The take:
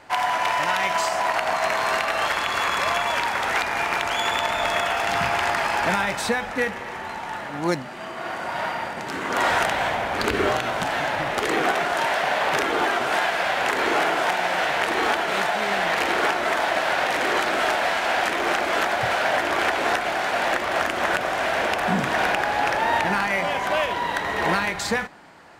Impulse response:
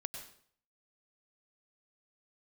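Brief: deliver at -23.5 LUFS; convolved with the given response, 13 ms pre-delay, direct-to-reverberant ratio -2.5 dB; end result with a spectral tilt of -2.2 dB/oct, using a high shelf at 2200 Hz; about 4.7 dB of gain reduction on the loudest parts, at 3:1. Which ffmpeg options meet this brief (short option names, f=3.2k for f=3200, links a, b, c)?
-filter_complex "[0:a]highshelf=f=2.2k:g=4.5,acompressor=threshold=-23dB:ratio=3,asplit=2[a][b];[1:a]atrim=start_sample=2205,adelay=13[c];[b][c]afir=irnorm=-1:irlink=0,volume=4dB[d];[a][d]amix=inputs=2:normalize=0,volume=-3dB"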